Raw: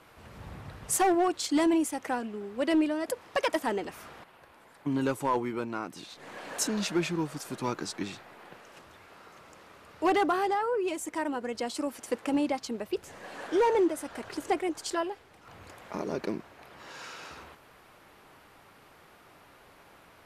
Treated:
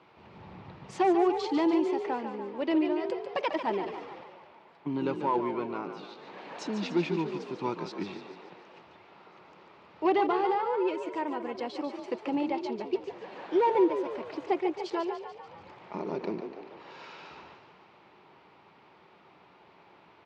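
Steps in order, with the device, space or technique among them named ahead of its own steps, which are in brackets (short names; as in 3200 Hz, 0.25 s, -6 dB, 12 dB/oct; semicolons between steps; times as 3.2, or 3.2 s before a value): frequency-shifting delay pedal into a guitar cabinet (frequency-shifting echo 0.145 s, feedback 58%, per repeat +40 Hz, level -8.5 dB; speaker cabinet 98–4600 Hz, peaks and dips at 180 Hz +6 dB, 370 Hz +7 dB, 890 Hz +7 dB, 1600 Hz -4 dB, 2400 Hz +3 dB); gain -4.5 dB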